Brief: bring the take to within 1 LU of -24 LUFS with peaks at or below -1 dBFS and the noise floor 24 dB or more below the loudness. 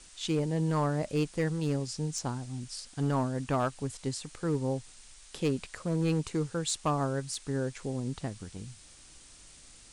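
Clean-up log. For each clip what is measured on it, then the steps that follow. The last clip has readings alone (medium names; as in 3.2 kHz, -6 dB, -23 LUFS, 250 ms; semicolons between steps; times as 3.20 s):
clipped samples 0.8%; clipping level -21.5 dBFS; noise floor -54 dBFS; noise floor target -57 dBFS; loudness -32.5 LUFS; peak level -21.5 dBFS; loudness target -24.0 LUFS
-> clip repair -21.5 dBFS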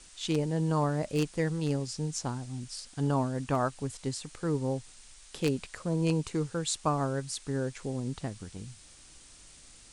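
clipped samples 0.0%; noise floor -54 dBFS; noise floor target -56 dBFS
-> noise print and reduce 6 dB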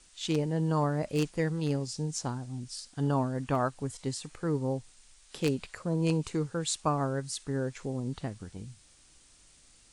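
noise floor -60 dBFS; loudness -32.0 LUFS; peak level -12.5 dBFS; loudness target -24.0 LUFS
-> trim +8 dB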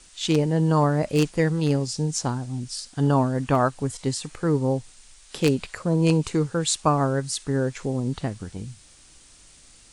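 loudness -24.0 LUFS; peak level -4.5 dBFS; noise floor -52 dBFS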